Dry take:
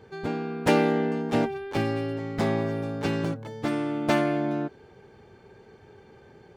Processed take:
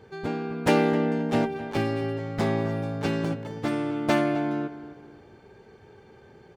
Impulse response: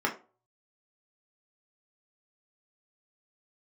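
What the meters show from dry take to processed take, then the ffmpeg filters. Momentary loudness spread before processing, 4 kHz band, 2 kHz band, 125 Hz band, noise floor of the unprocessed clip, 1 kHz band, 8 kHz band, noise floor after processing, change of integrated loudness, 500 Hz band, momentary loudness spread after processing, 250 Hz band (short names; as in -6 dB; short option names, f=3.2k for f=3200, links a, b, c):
9 LU, 0.0 dB, 0.0 dB, +1.0 dB, -53 dBFS, 0.0 dB, 0.0 dB, -53 dBFS, +0.5 dB, 0.0 dB, 9 LU, +0.5 dB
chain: -filter_complex "[0:a]asplit=2[a][b];[b]adelay=261,lowpass=f=2.6k:p=1,volume=-13.5dB,asplit=2[c][d];[d]adelay=261,lowpass=f=2.6k:p=1,volume=0.35,asplit=2[e][f];[f]adelay=261,lowpass=f=2.6k:p=1,volume=0.35[g];[a][c][e][g]amix=inputs=4:normalize=0"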